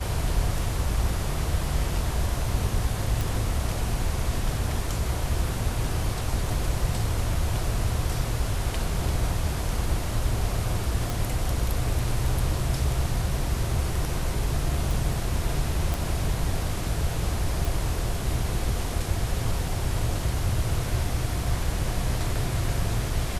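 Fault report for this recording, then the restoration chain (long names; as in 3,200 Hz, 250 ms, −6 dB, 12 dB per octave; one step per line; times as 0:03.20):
0:03.21: click
0:11.10: click
0:14.91: click
0:15.94: click
0:17.65: click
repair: click removal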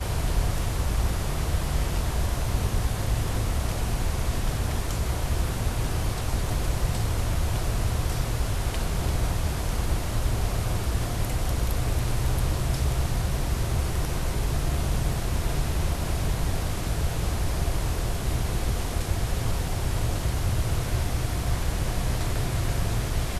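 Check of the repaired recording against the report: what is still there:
none of them is left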